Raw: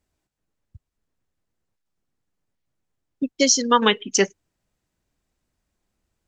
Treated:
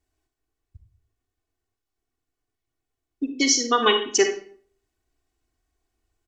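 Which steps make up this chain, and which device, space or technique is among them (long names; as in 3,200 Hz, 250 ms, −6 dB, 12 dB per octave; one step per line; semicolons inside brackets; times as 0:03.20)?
microphone above a desk (comb filter 2.7 ms, depth 90%; convolution reverb RT60 0.50 s, pre-delay 38 ms, DRR 5.5 dB)
level −4.5 dB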